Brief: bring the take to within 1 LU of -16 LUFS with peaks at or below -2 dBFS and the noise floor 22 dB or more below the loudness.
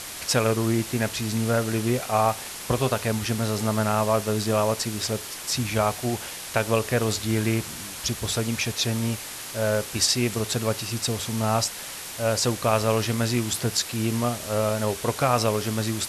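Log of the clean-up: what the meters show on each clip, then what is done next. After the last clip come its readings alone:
noise floor -37 dBFS; noise floor target -47 dBFS; loudness -25.0 LUFS; peak -7.0 dBFS; loudness target -16.0 LUFS
-> denoiser 10 dB, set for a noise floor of -37 dBFS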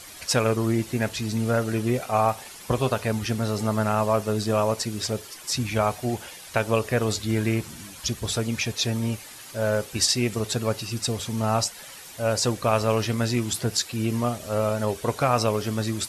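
noise floor -43 dBFS; noise floor target -48 dBFS
-> denoiser 6 dB, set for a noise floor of -43 dBFS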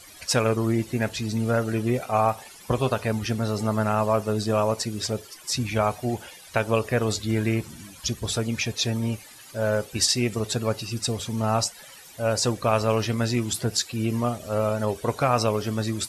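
noise floor -47 dBFS; noise floor target -48 dBFS
-> denoiser 6 dB, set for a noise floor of -47 dBFS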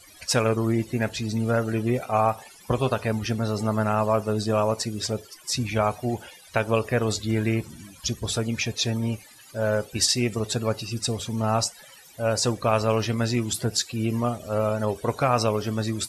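noise floor -50 dBFS; loudness -25.5 LUFS; peak -7.5 dBFS; loudness target -16.0 LUFS
-> gain +9.5 dB; limiter -2 dBFS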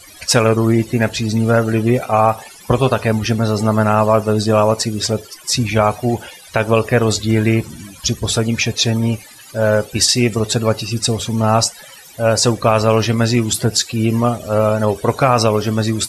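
loudness -16.0 LUFS; peak -2.0 dBFS; noise floor -40 dBFS

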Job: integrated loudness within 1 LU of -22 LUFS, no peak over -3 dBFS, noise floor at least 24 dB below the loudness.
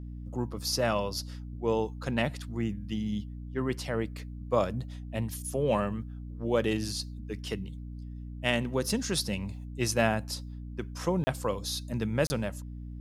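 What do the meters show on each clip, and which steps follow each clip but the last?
dropouts 2; longest dropout 30 ms; hum 60 Hz; harmonics up to 300 Hz; hum level -38 dBFS; loudness -31.5 LUFS; peak -9.5 dBFS; loudness target -22.0 LUFS
-> interpolate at 11.24/12.27, 30 ms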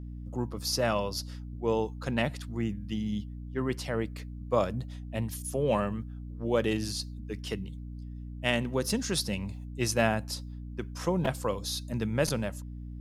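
dropouts 0; hum 60 Hz; harmonics up to 300 Hz; hum level -38 dBFS
-> de-hum 60 Hz, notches 5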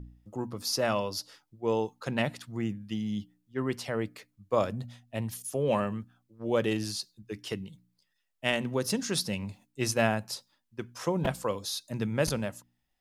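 hum none; loudness -32.0 LUFS; peak -9.5 dBFS; loudness target -22.0 LUFS
-> gain +10 dB; limiter -3 dBFS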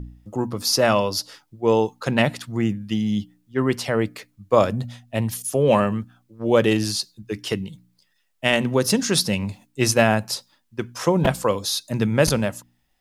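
loudness -22.0 LUFS; peak -3.0 dBFS; noise floor -67 dBFS

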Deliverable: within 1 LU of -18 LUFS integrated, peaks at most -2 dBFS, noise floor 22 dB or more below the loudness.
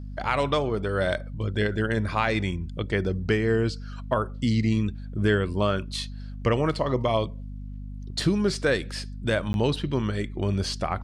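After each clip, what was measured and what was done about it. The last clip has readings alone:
dropouts 1; longest dropout 11 ms; hum 50 Hz; harmonics up to 250 Hz; hum level -34 dBFS; loudness -26.5 LUFS; peak -10.5 dBFS; loudness target -18.0 LUFS
-> interpolate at 9.53, 11 ms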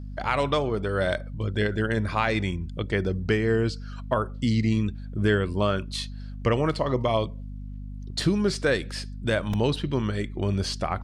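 dropouts 0; hum 50 Hz; harmonics up to 250 Hz; hum level -34 dBFS
-> notches 50/100/150/200/250 Hz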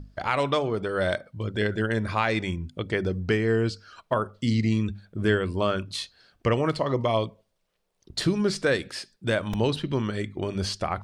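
hum none; loudness -27.0 LUFS; peak -9.0 dBFS; loudness target -18.0 LUFS
-> gain +9 dB; limiter -2 dBFS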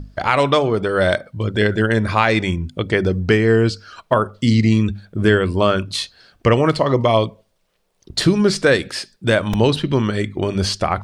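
loudness -18.0 LUFS; peak -2.0 dBFS; noise floor -65 dBFS

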